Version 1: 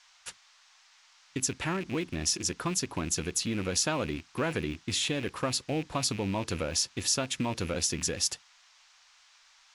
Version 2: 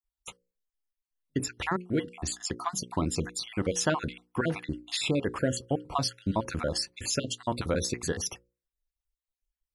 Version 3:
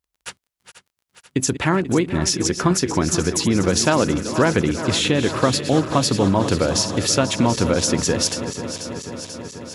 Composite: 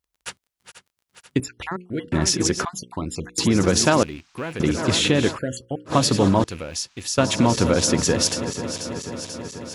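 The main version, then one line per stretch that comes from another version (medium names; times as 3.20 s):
3
1.40–2.12 s: from 2
2.65–3.38 s: from 2
4.03–4.60 s: from 1
5.33–5.90 s: from 2, crossfade 0.10 s
6.44–7.18 s: from 1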